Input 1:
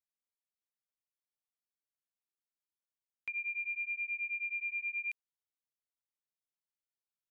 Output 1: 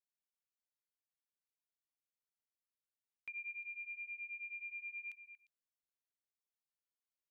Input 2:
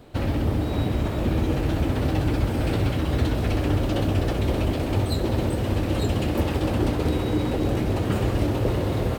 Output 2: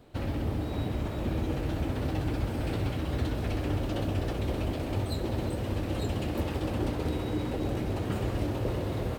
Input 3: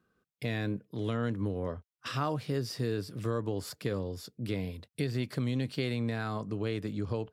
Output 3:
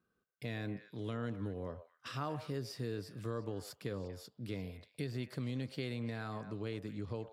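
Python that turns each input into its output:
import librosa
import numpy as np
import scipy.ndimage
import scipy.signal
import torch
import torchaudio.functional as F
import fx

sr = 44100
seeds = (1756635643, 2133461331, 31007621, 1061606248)

y = fx.echo_stepped(x, sr, ms=117, hz=710.0, octaves=1.4, feedback_pct=70, wet_db=-8.5)
y = F.gain(torch.from_numpy(y), -7.5).numpy()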